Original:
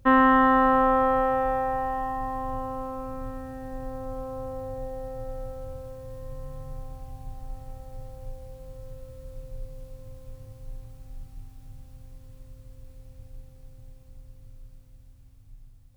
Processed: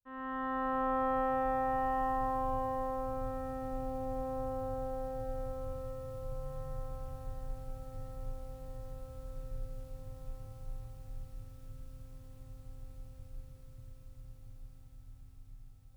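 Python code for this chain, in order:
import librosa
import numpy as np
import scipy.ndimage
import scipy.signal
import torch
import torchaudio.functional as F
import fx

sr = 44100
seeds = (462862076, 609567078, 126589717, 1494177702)

y = fx.fade_in_head(x, sr, length_s=2.09)
y = fx.echo_alternate(y, sr, ms=676, hz=940.0, feedback_pct=78, wet_db=-11)
y = y * librosa.db_to_amplitude(-4.0)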